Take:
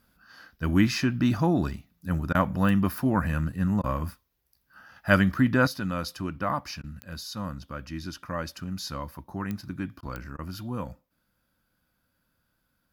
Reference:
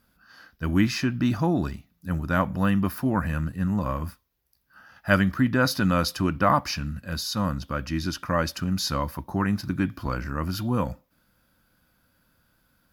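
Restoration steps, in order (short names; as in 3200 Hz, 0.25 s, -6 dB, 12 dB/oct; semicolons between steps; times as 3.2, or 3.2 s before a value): de-click; interpolate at 2.33/3.82/6.82/10.01/10.37, 16 ms; gain correction +8 dB, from 5.67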